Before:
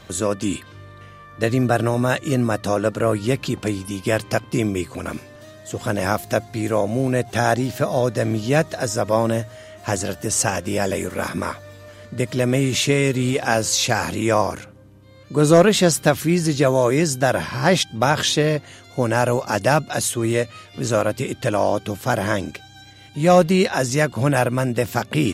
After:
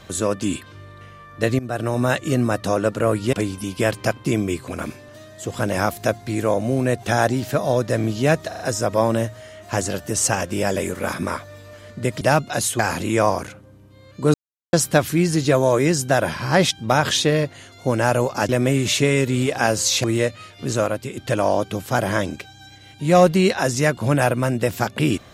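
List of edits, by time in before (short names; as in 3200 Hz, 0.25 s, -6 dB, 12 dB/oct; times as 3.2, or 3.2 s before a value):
1.59–2.03 fade in, from -17.5 dB
3.33–3.6 cut
8.75 stutter 0.04 s, 4 plays
12.36–13.91 swap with 19.61–20.19
15.46–15.85 mute
20.83–21.32 fade out, to -8 dB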